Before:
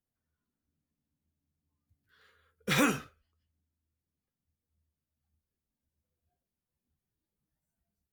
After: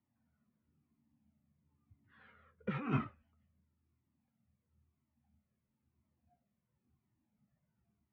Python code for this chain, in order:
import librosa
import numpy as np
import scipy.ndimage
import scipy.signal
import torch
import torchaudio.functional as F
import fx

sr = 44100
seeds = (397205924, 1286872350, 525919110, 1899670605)

y = fx.over_compress(x, sr, threshold_db=-36.0, ratio=-1.0)
y = fx.cabinet(y, sr, low_hz=110.0, low_slope=12, high_hz=2200.0, hz=(120.0, 220.0, 460.0, 1600.0), db=(7, 9, -7, -8))
y = fx.comb_cascade(y, sr, direction='falling', hz=0.99)
y = y * librosa.db_to_amplitude(4.5)